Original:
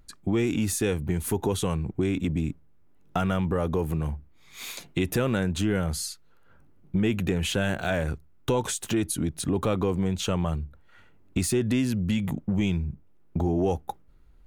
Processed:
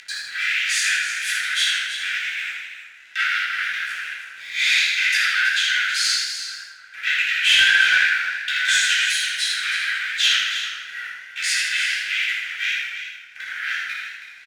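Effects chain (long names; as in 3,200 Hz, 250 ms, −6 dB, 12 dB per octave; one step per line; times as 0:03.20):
running median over 3 samples
in parallel at −2 dB: brickwall limiter −21.5 dBFS, peak gain reduction 8.5 dB
on the sum: gain into a clipping stage and back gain 18.5 dB
leveller curve on the samples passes 2
Butterworth high-pass 1,500 Hz 96 dB per octave
head-to-tape spacing loss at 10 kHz 22 dB
rectangular room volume 360 cubic metres, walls mixed, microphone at 3.7 metres
upward compression, threshold −42 dBFS
leveller curve on the samples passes 1
single-tap delay 323 ms −10.5 dB
feedback echo with a swinging delay time 81 ms, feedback 52%, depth 71 cents, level −6 dB
level +5 dB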